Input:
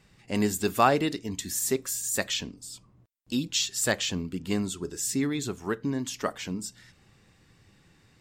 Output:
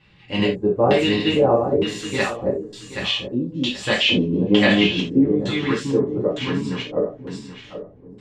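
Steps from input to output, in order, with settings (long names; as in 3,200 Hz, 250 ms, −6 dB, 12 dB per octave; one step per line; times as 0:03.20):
feedback delay that plays each chunk backwards 389 ms, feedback 49%, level 0 dB
0:03.93–0:05.24: graphic EQ with 15 bands 250 Hz +8 dB, 630 Hz +6 dB, 2,500 Hz +7 dB, 10,000 Hz −10 dB
auto-filter low-pass square 1.1 Hz 500–3,100 Hz
reverb whose tail is shaped and stops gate 110 ms falling, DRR −5.5 dB
level −2 dB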